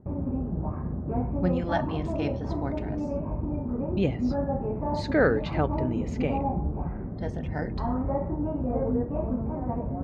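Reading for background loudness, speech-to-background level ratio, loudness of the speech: -30.5 LUFS, 0.0 dB, -30.5 LUFS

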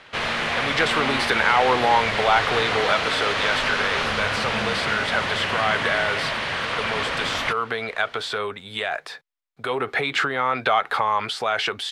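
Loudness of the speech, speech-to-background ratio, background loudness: -24.0 LUFS, -0.5 dB, -23.5 LUFS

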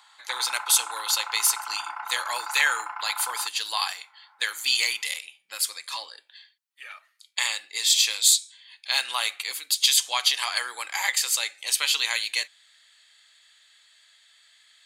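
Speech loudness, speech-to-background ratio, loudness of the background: -24.0 LUFS, 11.5 dB, -35.5 LUFS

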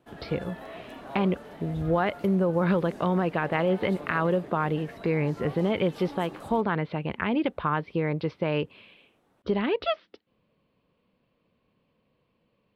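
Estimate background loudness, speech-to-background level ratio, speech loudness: -43.5 LUFS, 16.0 dB, -27.5 LUFS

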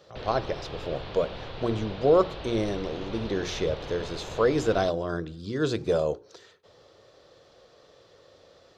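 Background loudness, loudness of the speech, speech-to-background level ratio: -39.5 LUFS, -28.0 LUFS, 11.5 dB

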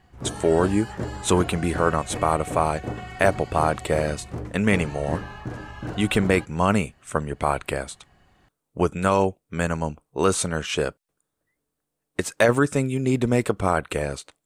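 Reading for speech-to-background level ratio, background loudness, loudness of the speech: 10.5 dB, -34.5 LUFS, -24.0 LUFS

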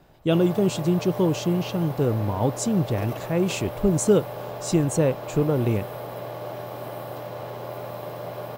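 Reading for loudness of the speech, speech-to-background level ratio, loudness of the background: -24.0 LUFS, 11.0 dB, -35.0 LUFS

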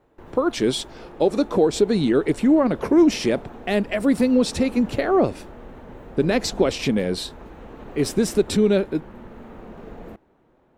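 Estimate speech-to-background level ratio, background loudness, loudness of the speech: 20.0 dB, -41.0 LUFS, -21.0 LUFS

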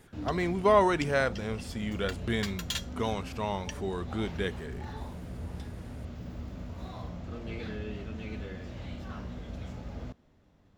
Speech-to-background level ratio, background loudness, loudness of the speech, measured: 10.0 dB, -40.5 LUFS, -30.5 LUFS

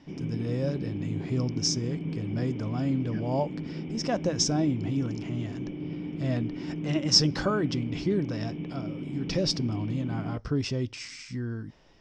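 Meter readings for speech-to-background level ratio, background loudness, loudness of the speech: 6.0 dB, -36.0 LUFS, -30.0 LUFS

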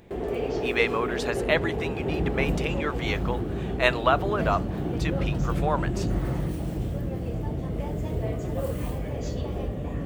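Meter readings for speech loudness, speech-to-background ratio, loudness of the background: -28.5 LUFS, 1.0 dB, -29.5 LUFS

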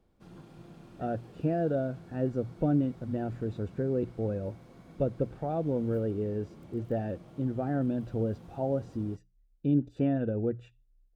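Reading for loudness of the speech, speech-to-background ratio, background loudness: -32.0 LUFS, 20.0 dB, -52.0 LUFS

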